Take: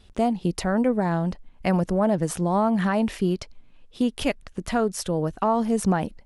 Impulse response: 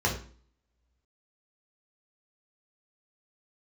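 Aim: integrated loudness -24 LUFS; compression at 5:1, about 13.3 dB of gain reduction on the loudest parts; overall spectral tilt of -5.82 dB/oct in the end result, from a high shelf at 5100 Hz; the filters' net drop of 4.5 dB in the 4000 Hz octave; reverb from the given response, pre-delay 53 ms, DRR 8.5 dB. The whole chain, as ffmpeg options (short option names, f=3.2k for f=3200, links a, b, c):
-filter_complex "[0:a]equalizer=f=4k:t=o:g=-3,highshelf=f=5.1k:g=-7,acompressor=threshold=-33dB:ratio=5,asplit=2[a][b];[1:a]atrim=start_sample=2205,adelay=53[c];[b][c]afir=irnorm=-1:irlink=0,volume=-20dB[d];[a][d]amix=inputs=2:normalize=0,volume=11.5dB"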